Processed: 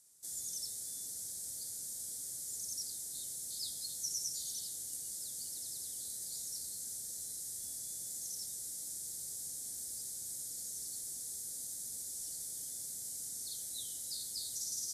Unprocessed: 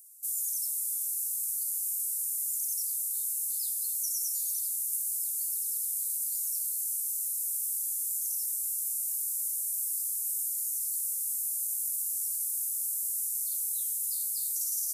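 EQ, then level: band-pass 120–2600 Hz; bass shelf 160 Hz +10.5 dB; +15.5 dB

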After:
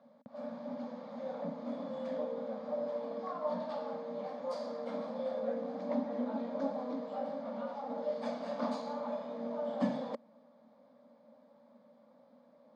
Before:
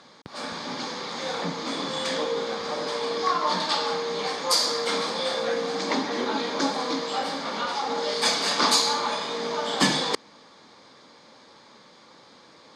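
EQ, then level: two resonant band-passes 370 Hz, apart 1.3 oct; 0.0 dB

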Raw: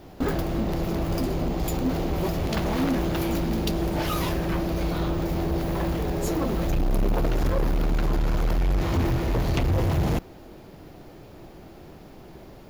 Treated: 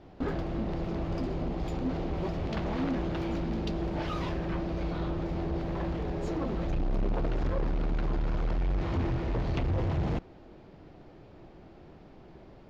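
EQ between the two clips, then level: distance through air 160 m; -6.0 dB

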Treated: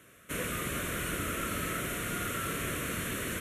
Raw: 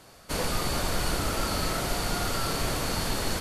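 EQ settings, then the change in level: high-pass 57 Hz; bass shelf 170 Hz -7.5 dB; static phaser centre 2 kHz, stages 4; 0.0 dB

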